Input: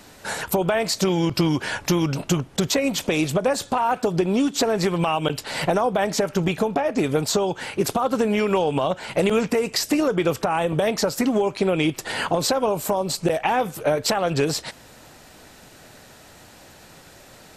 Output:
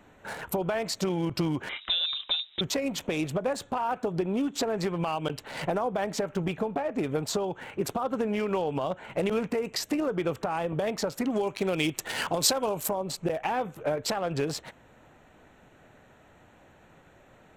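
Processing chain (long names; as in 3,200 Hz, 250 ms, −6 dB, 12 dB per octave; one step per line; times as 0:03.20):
adaptive Wiener filter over 9 samples
0:01.69–0:02.61: voice inversion scrambler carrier 3,800 Hz
0:11.30–0:12.89: high-shelf EQ 2,800 Hz +12 dB
level −7.5 dB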